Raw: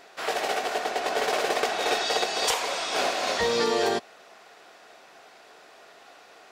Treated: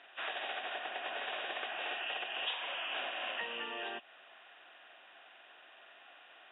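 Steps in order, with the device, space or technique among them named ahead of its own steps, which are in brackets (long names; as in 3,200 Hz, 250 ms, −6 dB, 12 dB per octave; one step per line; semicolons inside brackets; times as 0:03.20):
hearing aid with frequency lowering (hearing-aid frequency compression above 2,400 Hz 4 to 1; downward compressor 4 to 1, threshold −29 dBFS, peak gain reduction 9 dB; loudspeaker in its box 300–6,500 Hz, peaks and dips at 440 Hz −10 dB, 1,700 Hz +7 dB, 3,600 Hz +7 dB)
level −8.5 dB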